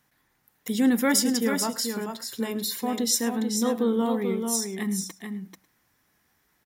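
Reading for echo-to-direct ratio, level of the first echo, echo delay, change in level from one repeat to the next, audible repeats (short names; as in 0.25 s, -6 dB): -5.5 dB, -19.0 dB, 0.106 s, no steady repeat, 3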